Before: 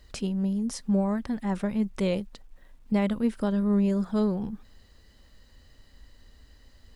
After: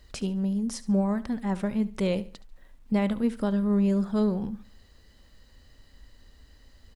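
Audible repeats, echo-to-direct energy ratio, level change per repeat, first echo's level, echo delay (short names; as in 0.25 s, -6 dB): 2, -16.5 dB, -10.0 dB, -17.0 dB, 71 ms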